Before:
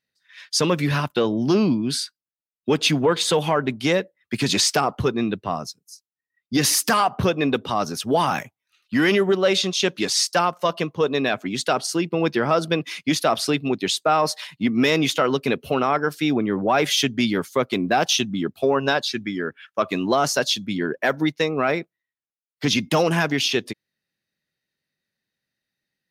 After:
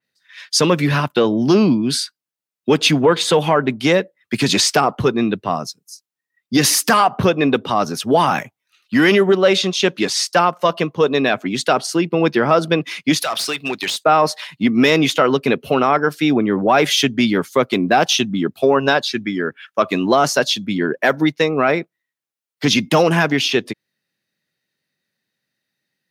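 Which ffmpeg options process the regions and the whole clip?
-filter_complex "[0:a]asettb=1/sr,asplit=3[a][b][c];[a]atrim=end=13.224[d];[b]atrim=start=13.22:end=14.04,asetpts=PTS-STARTPTS,afade=t=in:d=0.004:c=qsin,afade=t=out:st=0.816:d=0.004:c=qsin,tiltshelf=f=770:g=-10,acompressor=threshold=-20dB:ratio=6:attack=3.2:release=140:knee=1:detection=peak,asoftclip=type=hard:threshold=-20.5dB[e];[c]atrim=start=14.036[f];[d][e]acrossfade=d=0.004:c1=hsin:c2=qsin[g];[g][f]acrossfade=d=0.004:c1=qsin:c2=hsin,highpass=110,adynamicequalizer=threshold=0.0141:dfrequency=3500:dqfactor=0.7:tfrequency=3500:tqfactor=0.7:attack=5:release=100:ratio=0.375:range=3:mode=cutabove:tftype=highshelf,volume=5.5dB"

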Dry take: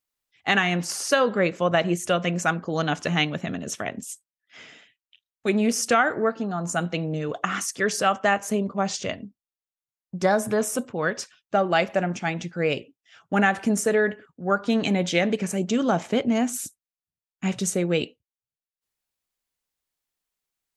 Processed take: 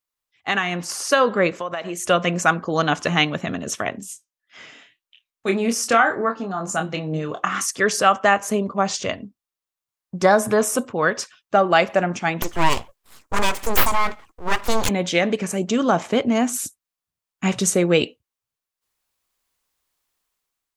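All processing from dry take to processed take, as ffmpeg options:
-filter_complex "[0:a]asettb=1/sr,asplit=3[a][b][c];[a]atrim=end=1.594[d];[b]atrim=start=1.59:end=2.07,asetpts=PTS-STARTPTS,afade=t=in:d=0.004:c=qsin,afade=t=out:st=0.476:d=0.004:c=qsin,highpass=f=400:p=1,acompressor=threshold=-28dB:ratio=6:attack=3.2:release=140:knee=1:detection=peak[e];[c]atrim=start=2.066[f];[d][e]acrossfade=d=0.004:c1=hsin:c2=qsin[g];[g][f]acrossfade=d=0.004:c1=qsin:c2=hsin,asettb=1/sr,asplit=3[h][i][j];[h]atrim=end=3.974[k];[i]atrim=start=3.97:end=7.61,asetpts=PTS-STARTPTS,afade=t=in:d=0.004:c=qsin,afade=t=out:st=3.636:d=0.004:c=qsin,flanger=delay=4.9:depth=2.5:regen=81:speed=1.8:shape=sinusoidal,asplit=2[l][m];[m]adelay=26,volume=-6.5dB[n];[l][n]amix=inputs=2:normalize=0,atrim=end_sample=160524[o];[j]atrim=start=7.606[p];[k][o]acrossfade=d=0.004:c1=hsin:c2=qsin[q];[q][p]acrossfade=d=0.004:c1=qsin:c2=hsin,asettb=1/sr,asplit=3[r][s][t];[r]atrim=end=12.424[u];[s]atrim=start=12.42:end=14.89,asetpts=PTS-STARTPTS,afade=t=in:d=0.004:c=qsin,afade=t=out:st=2.466:d=0.004:c=qsin,highshelf=f=4.6k:t=q:w=1.5:g=12,acontrast=25,aeval=exprs='abs(val(0))':c=same[v];[t]atrim=start=14.886[w];[u][v]acrossfade=d=0.004:c1=hsin:c2=qsin[x];[x][w]acrossfade=d=0.004:c1=qsin:c2=hsin,equalizer=f=170:w=1.4:g=-3,dynaudnorm=f=630:g=3:m=11.5dB,equalizer=f=1.1k:w=3.2:g=5,volume=-2dB"

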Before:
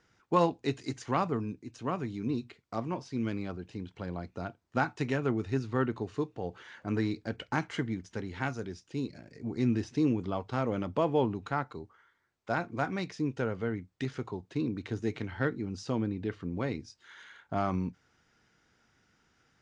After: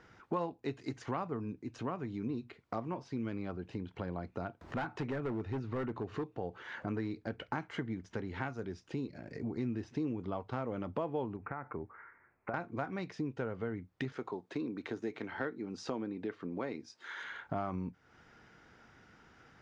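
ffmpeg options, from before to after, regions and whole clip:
-filter_complex "[0:a]asettb=1/sr,asplit=3[a][b][c];[a]atrim=end=4.614[d];[b]atrim=start=4.61:end=6.26,asetpts=PTS-STARTPTS,afade=t=in:d=0.004:c=qsin,afade=t=out:st=1.646:d=0.004:c=qsin,highshelf=f=5.4k:g=-8.5,asoftclip=type=hard:threshold=-28dB,acompressor=mode=upward:threshold=-35dB:ratio=2.5:attack=3.2:release=140:knee=2.83:detection=peak[e];[c]atrim=start=6.256[f];[d][e]acrossfade=d=0.004:c1=hsin:c2=qsin[g];[g][f]acrossfade=d=0.004:c1=qsin:c2=hsin,asettb=1/sr,asplit=3[h][i][j];[h]atrim=end=11.364[k];[i]atrim=start=11.36:end=12.54,asetpts=PTS-STARTPTS,afade=t=in:d=0.004:c=qsin,afade=t=out:st=1.176:d=0.004:c=qsin,acompressor=threshold=-35dB:ratio=6:attack=3.2:release=140:knee=1:detection=peak,asuperstop=centerf=4900:order=12:qfactor=0.79,highshelf=f=3.3k:t=q:w=1.5:g=-10.5[l];[j]atrim=start=12.536[m];[k][l]acrossfade=d=0.004:c1=hsin:c2=qsin[n];[n][m]acrossfade=d=0.004:c1=qsin:c2=hsin,asettb=1/sr,asplit=3[o][p][q];[o]atrim=end=14.124[r];[p]atrim=start=14.12:end=17.24,asetpts=PTS-STARTPTS,afade=t=in:d=0.004:c=qsin,afade=t=out:st=3.116:d=0.004:c=qsin,highpass=240,highshelf=f=5.5k:g=3.5,bandreject=f=2.9k:w=24[s];[q]atrim=start=17.236[t];[r][s]acrossfade=d=0.004:c1=hsin:c2=qsin[u];[u][t]acrossfade=d=0.004:c1=qsin:c2=hsin,lowpass=f=1.3k:p=1,lowshelf=f=460:g=-5.5,acompressor=threshold=-53dB:ratio=3,volume=13.5dB"

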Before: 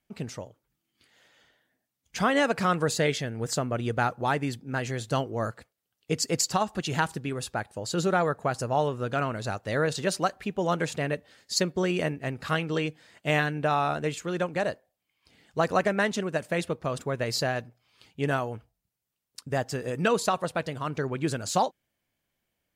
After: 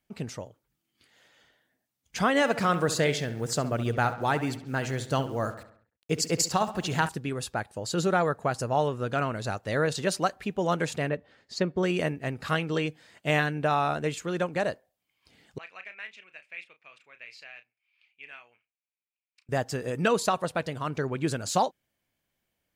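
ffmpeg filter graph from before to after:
-filter_complex "[0:a]asettb=1/sr,asplit=3[a][b][c];[a]atrim=end=2.344[d];[b]atrim=start=2.34:end=7.09,asetpts=PTS-STARTPTS,afade=t=in:d=0.004:c=qsin,afade=t=out:st=4.746:d=0.004:c=qsin,acrusher=bits=8:mix=0:aa=0.5,asplit=2[e][f];[f]adelay=68,lowpass=f=3.6k:p=1,volume=-12dB,asplit=2[g][h];[h]adelay=68,lowpass=f=3.6k:p=1,volume=0.51,asplit=2[i][j];[j]adelay=68,lowpass=f=3.6k:p=1,volume=0.51,asplit=2[k][l];[l]adelay=68,lowpass=f=3.6k:p=1,volume=0.51,asplit=2[m][n];[n]adelay=68,lowpass=f=3.6k:p=1,volume=0.51[o];[e][g][i][k][m][o]amix=inputs=6:normalize=0,atrim=end_sample=209475[p];[c]atrim=start=7.086[q];[d][p]acrossfade=d=0.004:c1=hsin:c2=qsin[r];[r][q]acrossfade=d=0.004:c1=qsin:c2=hsin,asettb=1/sr,asplit=3[s][t][u];[s]atrim=end=11.094[v];[t]atrim=start=11.09:end=11.83,asetpts=PTS-STARTPTS,afade=t=in:d=0.004:c=qsin,afade=t=out:st=0.736:d=0.004:c=qsin,lowpass=f=2.8k:p=1,aemphasis=mode=reproduction:type=cd[w];[u]atrim=start=11.826[x];[v][w]acrossfade=d=0.004:c1=hsin:c2=qsin[y];[y][x]acrossfade=d=0.004:c1=qsin:c2=hsin,asettb=1/sr,asplit=3[z][aa][ab];[z]atrim=end=15.584[ac];[aa]atrim=start=15.58:end=19.49,asetpts=PTS-STARTPTS,afade=t=in:d=0.004:c=qsin,afade=t=out:st=3.906:d=0.004:c=qsin,bandpass=f=2.4k:t=q:w=7.7,asplit=2[ad][ae];[ae]adelay=33,volume=-10.5dB[af];[ad][af]amix=inputs=2:normalize=0,atrim=end_sample=172431[ag];[ab]atrim=start=19.486[ah];[ac][ag]acrossfade=d=0.004:c1=hsin:c2=qsin[ai];[ai][ah]acrossfade=d=0.004:c1=qsin:c2=hsin"

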